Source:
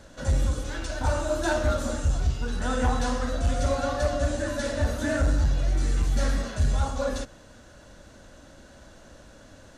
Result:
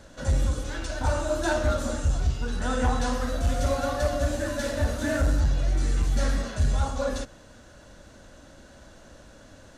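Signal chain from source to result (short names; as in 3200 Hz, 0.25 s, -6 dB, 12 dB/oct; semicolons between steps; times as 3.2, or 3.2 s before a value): 3.13–5.4 CVSD 64 kbps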